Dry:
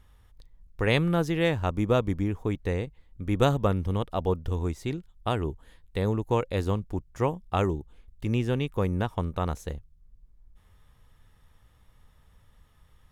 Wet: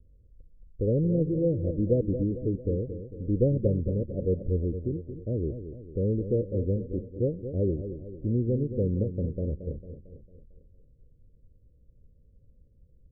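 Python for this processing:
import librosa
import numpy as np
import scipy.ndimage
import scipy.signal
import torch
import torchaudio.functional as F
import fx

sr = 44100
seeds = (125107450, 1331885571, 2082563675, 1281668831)

y = scipy.signal.sosfilt(scipy.signal.butter(16, 570.0, 'lowpass', fs=sr, output='sos'), x)
y = fx.echo_feedback(y, sr, ms=225, feedback_pct=51, wet_db=-10)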